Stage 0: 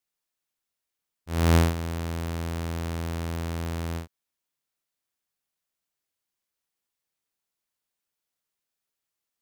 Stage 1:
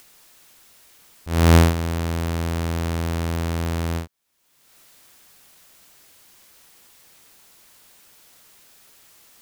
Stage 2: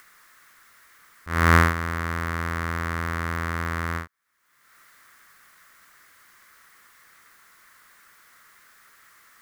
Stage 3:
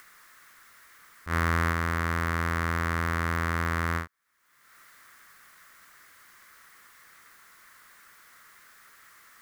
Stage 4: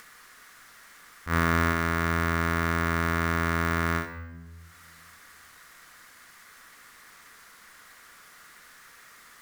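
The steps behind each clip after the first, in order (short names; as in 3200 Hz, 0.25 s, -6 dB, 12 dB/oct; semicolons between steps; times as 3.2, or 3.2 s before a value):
upward compressor, threshold -37 dBFS; gain +6.5 dB
band shelf 1500 Hz +14.5 dB 1.2 oct; gain -6 dB
limiter -12.5 dBFS, peak gain reduction 11 dB
on a send at -6 dB: reverb RT60 1.2 s, pre-delay 4 ms; on the sum: careless resampling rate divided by 2×, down none, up hold; gain +2 dB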